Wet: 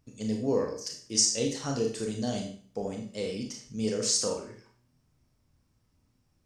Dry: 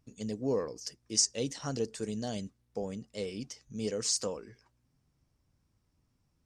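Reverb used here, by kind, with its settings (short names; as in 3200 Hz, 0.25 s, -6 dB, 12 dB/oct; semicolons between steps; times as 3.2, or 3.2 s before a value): Schroeder reverb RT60 0.46 s, combs from 25 ms, DRR 1.5 dB; gain +2 dB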